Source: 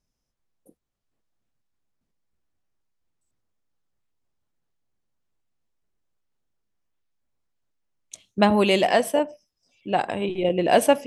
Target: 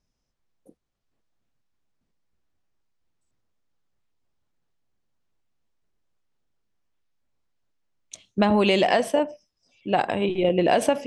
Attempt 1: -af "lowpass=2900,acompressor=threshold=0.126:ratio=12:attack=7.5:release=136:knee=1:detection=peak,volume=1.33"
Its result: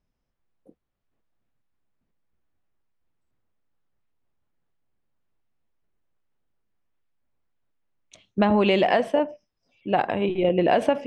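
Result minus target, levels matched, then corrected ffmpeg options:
8 kHz band -13.5 dB
-af "lowpass=6900,acompressor=threshold=0.126:ratio=12:attack=7.5:release=136:knee=1:detection=peak,volume=1.33"

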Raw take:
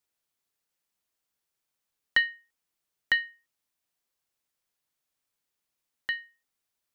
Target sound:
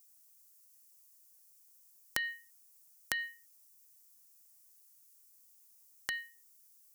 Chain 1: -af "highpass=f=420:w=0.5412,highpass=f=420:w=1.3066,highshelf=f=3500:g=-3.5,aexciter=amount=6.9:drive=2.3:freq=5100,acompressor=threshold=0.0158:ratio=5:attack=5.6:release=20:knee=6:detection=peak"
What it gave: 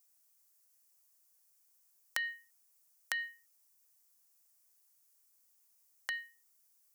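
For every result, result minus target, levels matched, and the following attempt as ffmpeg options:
500 Hz band -5.5 dB; 8 kHz band -3.0 dB
-af "highshelf=f=3500:g=-3.5,aexciter=amount=6.9:drive=2.3:freq=5100,acompressor=threshold=0.0158:ratio=5:attack=5.6:release=20:knee=6:detection=peak"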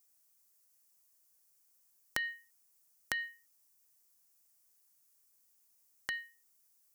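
8 kHz band -3.5 dB
-af "highshelf=f=3500:g=4,aexciter=amount=6.9:drive=2.3:freq=5100,acompressor=threshold=0.0158:ratio=5:attack=5.6:release=20:knee=6:detection=peak"

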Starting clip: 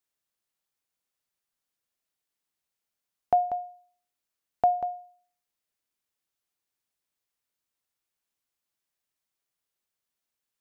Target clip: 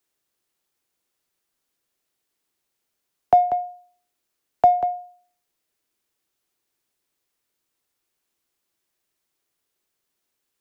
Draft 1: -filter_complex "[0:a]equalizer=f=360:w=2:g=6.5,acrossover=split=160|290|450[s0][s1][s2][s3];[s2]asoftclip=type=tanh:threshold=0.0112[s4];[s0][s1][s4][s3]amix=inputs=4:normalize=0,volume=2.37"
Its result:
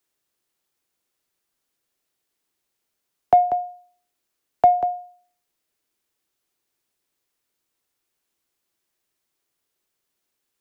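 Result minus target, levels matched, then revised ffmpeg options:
saturation: distortion -5 dB
-filter_complex "[0:a]equalizer=f=360:w=2:g=6.5,acrossover=split=160|290|450[s0][s1][s2][s3];[s2]asoftclip=type=tanh:threshold=0.00422[s4];[s0][s1][s4][s3]amix=inputs=4:normalize=0,volume=2.37"

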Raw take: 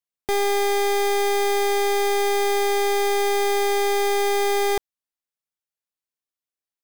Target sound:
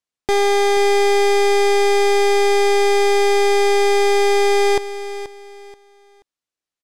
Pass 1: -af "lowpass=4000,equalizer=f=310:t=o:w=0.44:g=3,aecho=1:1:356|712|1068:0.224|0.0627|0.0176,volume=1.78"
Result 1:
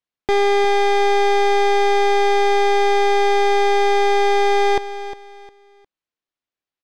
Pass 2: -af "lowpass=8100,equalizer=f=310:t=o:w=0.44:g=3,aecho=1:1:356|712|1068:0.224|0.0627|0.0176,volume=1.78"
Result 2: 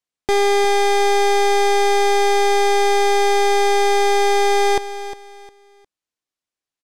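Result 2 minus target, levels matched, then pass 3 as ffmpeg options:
echo 125 ms early
-af "lowpass=8100,equalizer=f=310:t=o:w=0.44:g=3,aecho=1:1:481|962|1443:0.224|0.0627|0.0176,volume=1.78"

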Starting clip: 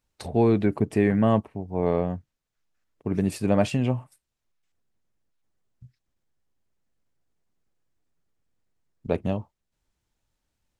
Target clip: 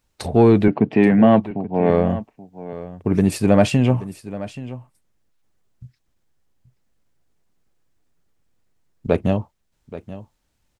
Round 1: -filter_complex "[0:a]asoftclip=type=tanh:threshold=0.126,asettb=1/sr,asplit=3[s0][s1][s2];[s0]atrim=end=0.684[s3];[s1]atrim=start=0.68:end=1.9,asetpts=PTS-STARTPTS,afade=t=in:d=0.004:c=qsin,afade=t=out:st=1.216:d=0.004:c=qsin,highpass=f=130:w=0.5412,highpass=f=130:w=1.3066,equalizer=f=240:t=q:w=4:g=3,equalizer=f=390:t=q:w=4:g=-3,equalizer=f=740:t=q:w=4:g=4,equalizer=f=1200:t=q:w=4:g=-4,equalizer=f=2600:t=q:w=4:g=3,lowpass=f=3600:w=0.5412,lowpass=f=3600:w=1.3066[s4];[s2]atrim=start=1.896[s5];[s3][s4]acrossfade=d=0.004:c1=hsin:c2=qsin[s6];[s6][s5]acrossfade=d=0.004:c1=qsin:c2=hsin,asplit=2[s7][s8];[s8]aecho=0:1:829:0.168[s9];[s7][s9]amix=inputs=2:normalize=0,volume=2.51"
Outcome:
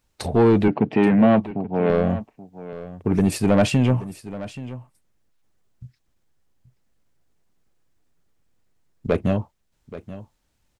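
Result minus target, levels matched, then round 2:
saturation: distortion +12 dB
-filter_complex "[0:a]asoftclip=type=tanh:threshold=0.355,asettb=1/sr,asplit=3[s0][s1][s2];[s0]atrim=end=0.684[s3];[s1]atrim=start=0.68:end=1.9,asetpts=PTS-STARTPTS,afade=t=in:d=0.004:c=qsin,afade=t=out:st=1.216:d=0.004:c=qsin,highpass=f=130:w=0.5412,highpass=f=130:w=1.3066,equalizer=f=240:t=q:w=4:g=3,equalizer=f=390:t=q:w=4:g=-3,equalizer=f=740:t=q:w=4:g=4,equalizer=f=1200:t=q:w=4:g=-4,equalizer=f=2600:t=q:w=4:g=3,lowpass=f=3600:w=0.5412,lowpass=f=3600:w=1.3066[s4];[s2]atrim=start=1.896[s5];[s3][s4]acrossfade=d=0.004:c1=hsin:c2=qsin[s6];[s6][s5]acrossfade=d=0.004:c1=qsin:c2=hsin,asplit=2[s7][s8];[s8]aecho=0:1:829:0.168[s9];[s7][s9]amix=inputs=2:normalize=0,volume=2.51"

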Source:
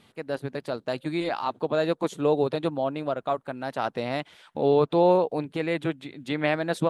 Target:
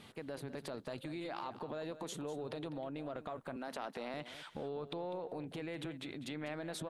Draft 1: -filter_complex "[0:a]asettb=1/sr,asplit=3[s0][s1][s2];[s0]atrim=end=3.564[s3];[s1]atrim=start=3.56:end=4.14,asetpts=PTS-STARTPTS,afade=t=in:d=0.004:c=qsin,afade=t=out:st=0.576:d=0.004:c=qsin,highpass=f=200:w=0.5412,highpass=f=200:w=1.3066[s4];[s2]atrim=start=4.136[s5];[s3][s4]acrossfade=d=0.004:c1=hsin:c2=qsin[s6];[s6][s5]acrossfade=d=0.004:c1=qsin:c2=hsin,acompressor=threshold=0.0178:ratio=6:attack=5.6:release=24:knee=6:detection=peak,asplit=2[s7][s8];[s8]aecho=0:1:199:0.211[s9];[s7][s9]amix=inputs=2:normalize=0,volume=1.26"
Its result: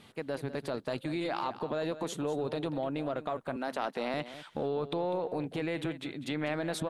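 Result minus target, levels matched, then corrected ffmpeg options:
compression: peak gain reduction -9 dB
-filter_complex "[0:a]asettb=1/sr,asplit=3[s0][s1][s2];[s0]atrim=end=3.564[s3];[s1]atrim=start=3.56:end=4.14,asetpts=PTS-STARTPTS,afade=t=in:d=0.004:c=qsin,afade=t=out:st=0.576:d=0.004:c=qsin,highpass=f=200:w=0.5412,highpass=f=200:w=1.3066[s4];[s2]atrim=start=4.136[s5];[s3][s4]acrossfade=d=0.004:c1=hsin:c2=qsin[s6];[s6][s5]acrossfade=d=0.004:c1=qsin:c2=hsin,acompressor=threshold=0.00501:ratio=6:attack=5.6:release=24:knee=6:detection=peak,asplit=2[s7][s8];[s8]aecho=0:1:199:0.211[s9];[s7][s9]amix=inputs=2:normalize=0,volume=1.26"

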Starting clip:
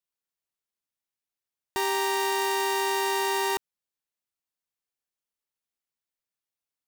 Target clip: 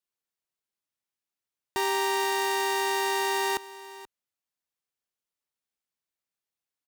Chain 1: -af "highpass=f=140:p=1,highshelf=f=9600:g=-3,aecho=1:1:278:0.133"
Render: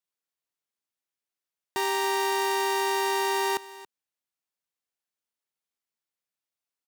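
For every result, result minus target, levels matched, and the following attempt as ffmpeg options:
echo 203 ms early; 125 Hz band -3.5 dB
-af "highpass=f=140:p=1,highshelf=f=9600:g=-3,aecho=1:1:481:0.133"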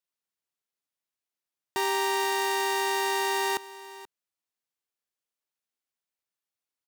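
125 Hz band -3.0 dB
-af "highpass=f=38:p=1,highshelf=f=9600:g=-3,aecho=1:1:481:0.133"

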